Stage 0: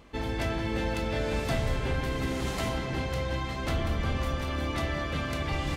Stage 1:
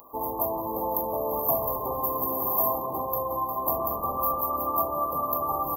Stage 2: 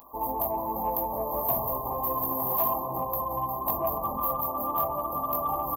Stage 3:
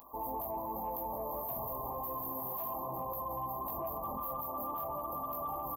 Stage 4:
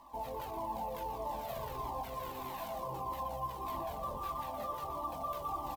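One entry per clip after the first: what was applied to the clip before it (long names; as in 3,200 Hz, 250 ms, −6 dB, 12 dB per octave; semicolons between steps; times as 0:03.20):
RIAA equalisation recording; brick-wall band-stop 1,200–12,000 Hz; tilt shelving filter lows −8.5 dB, about 710 Hz; level +8 dB
comb filter 1.2 ms, depth 34%; multi-voice chorus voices 6, 0.53 Hz, delay 19 ms, depth 4.6 ms; soft clipping −17.5 dBFS, distortion −25 dB; level +2.5 dB
brickwall limiter −27 dBFS, peak gain reduction 11 dB; level −3.5 dB
running median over 9 samples; single-tap delay 120 ms −9.5 dB; flanger whose copies keep moving one way falling 1.6 Hz; level +4 dB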